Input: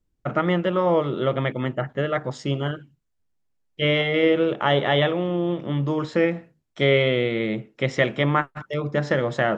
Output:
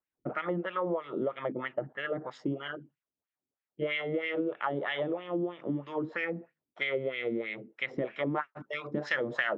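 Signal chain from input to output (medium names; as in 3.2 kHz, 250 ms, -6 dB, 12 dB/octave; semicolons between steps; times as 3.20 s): dynamic bell 5.1 kHz, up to +4 dB, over -44 dBFS, Q 2.4; wah-wah 3.1 Hz 250–2400 Hz, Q 2.4; compression 6:1, threshold -30 dBFS, peak gain reduction 10.5 dB; treble shelf 2.9 kHz -2.5 dB, from 8.35 s +10 dB; trim +2 dB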